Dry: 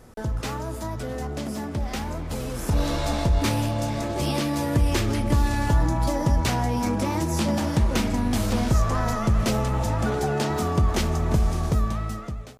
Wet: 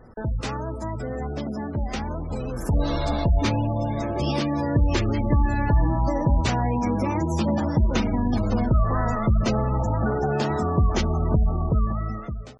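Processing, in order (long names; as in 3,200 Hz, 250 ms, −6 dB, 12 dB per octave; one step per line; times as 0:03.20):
gate on every frequency bin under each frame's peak −25 dB strong
level +1 dB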